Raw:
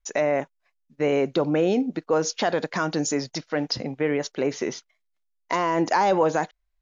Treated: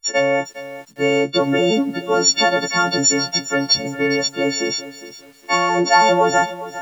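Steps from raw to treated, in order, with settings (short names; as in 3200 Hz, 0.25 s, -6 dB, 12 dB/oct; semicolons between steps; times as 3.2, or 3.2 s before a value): frequency quantiser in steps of 4 st; lo-fi delay 0.408 s, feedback 35%, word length 7-bit, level -14.5 dB; gain +4.5 dB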